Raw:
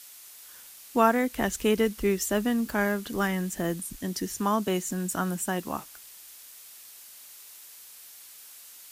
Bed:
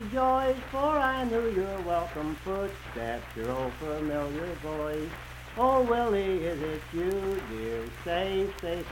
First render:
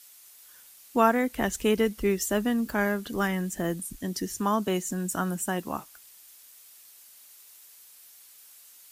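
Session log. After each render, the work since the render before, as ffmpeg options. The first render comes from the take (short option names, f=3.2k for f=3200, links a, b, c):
-af "afftdn=nr=6:nf=-49"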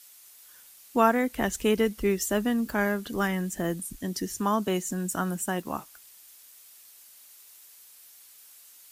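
-filter_complex "[0:a]asettb=1/sr,asplit=3[a][b][c];[a]atrim=end=5.114[d];[b]atrim=start=5.11:end=5.7,asetpts=PTS-STARTPTS,afade=t=in:d=0.004:c=qsin,afade=t=out:st=0.586:d=0.004:c=qsin,aeval=exprs='sgn(val(0))*max(abs(val(0))-0.00119,0)':c=same[e];[c]atrim=start=5.696[f];[d][e]acrossfade=d=0.004:c1=hsin:c2=qsin[g];[g][f]acrossfade=d=0.004:c1=qsin:c2=hsin"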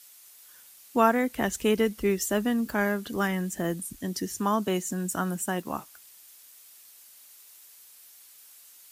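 -af "highpass=54"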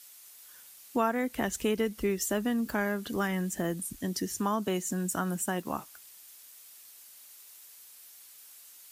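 -af "acompressor=threshold=-28dB:ratio=2"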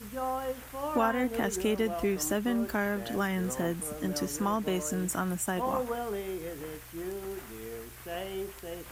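-filter_complex "[1:a]volume=-8dB[a];[0:a][a]amix=inputs=2:normalize=0"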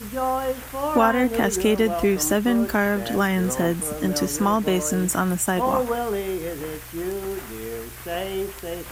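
-af "volume=9dB"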